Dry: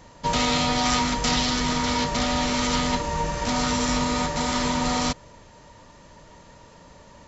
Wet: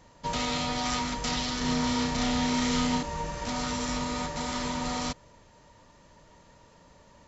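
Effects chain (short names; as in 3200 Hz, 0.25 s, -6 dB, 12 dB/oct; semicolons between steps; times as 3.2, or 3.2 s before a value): 1.58–3.03 flutter echo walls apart 5.5 m, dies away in 0.57 s; gain -7.5 dB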